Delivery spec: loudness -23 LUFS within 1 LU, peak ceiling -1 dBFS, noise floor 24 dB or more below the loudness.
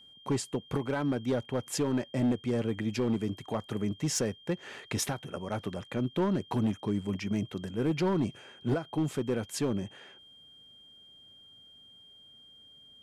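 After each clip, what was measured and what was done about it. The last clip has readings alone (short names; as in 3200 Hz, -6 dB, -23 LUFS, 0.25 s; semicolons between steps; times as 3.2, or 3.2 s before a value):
clipped 1.6%; flat tops at -22.5 dBFS; steady tone 3200 Hz; tone level -53 dBFS; loudness -32.0 LUFS; peak -22.5 dBFS; loudness target -23.0 LUFS
-> clip repair -22.5 dBFS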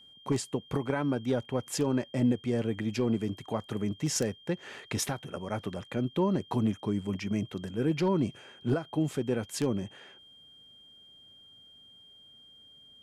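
clipped 0.0%; steady tone 3200 Hz; tone level -53 dBFS
-> notch 3200 Hz, Q 30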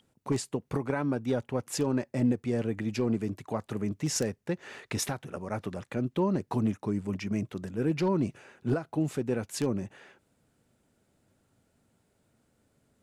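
steady tone none; loudness -31.5 LUFS; peak -13.5 dBFS; loudness target -23.0 LUFS
-> gain +8.5 dB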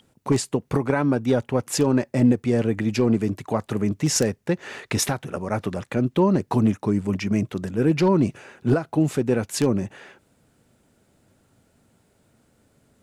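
loudness -23.0 LUFS; peak -5.0 dBFS; noise floor -64 dBFS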